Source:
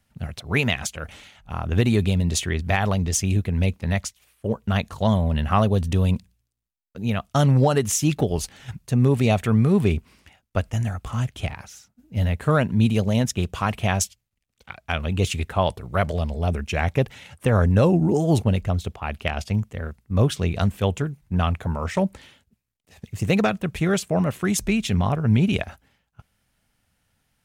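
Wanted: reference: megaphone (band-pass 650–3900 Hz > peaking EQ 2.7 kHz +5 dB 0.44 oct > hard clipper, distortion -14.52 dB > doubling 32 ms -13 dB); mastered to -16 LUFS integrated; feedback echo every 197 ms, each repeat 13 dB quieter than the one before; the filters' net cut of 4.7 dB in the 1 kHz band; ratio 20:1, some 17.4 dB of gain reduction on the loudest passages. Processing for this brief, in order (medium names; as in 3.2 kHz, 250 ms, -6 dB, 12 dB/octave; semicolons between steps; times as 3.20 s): peaking EQ 1 kHz -5 dB; compression 20:1, threshold -31 dBFS; band-pass 650–3900 Hz; peaking EQ 2.7 kHz +5 dB 0.44 oct; feedback delay 197 ms, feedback 22%, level -13 dB; hard clipper -30.5 dBFS; doubling 32 ms -13 dB; trim +28.5 dB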